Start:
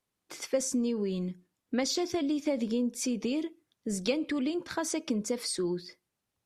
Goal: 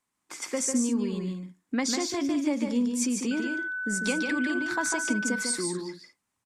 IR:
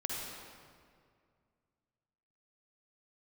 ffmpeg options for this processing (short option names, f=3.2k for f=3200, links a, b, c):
-filter_complex "[0:a]equalizer=f=250:t=o:w=1:g=8,equalizer=f=500:t=o:w=1:g=-3,equalizer=f=1k:t=o:w=1:g=10,equalizer=f=2k:t=o:w=1:g=7,equalizer=f=8k:t=o:w=1:g=12,asettb=1/sr,asplit=3[a][b][c];[a]atrim=end=3.314[d];[b]atrim=start=3.31:end=5.43,asetpts=PTS-STARTPTS,afade=t=in:d=0.004:c=qsin,afade=t=out:st=2.116:d=0.004:c=qsin,aeval=exprs='val(0)+0.0316*sin(2*PI*1500*n/s)':c=same[e];[c]atrim=start=5.426[f];[d][e]acrossfade=d=0.004:c1=hsin:c2=qsin[g];[g][f]acrossfade=d=0.004:c1=qsin:c2=hsin,aecho=1:1:148|202:0.562|0.237,volume=-5dB"